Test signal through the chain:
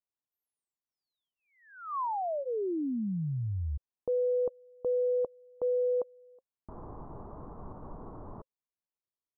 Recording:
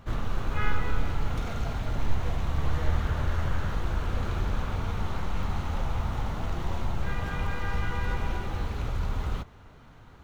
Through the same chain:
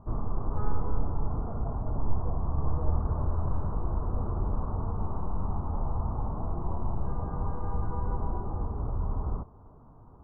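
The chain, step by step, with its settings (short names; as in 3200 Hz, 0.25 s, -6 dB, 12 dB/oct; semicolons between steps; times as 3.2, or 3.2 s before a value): elliptic low-pass 1100 Hz, stop band 60 dB; notch 530 Hz, Q 12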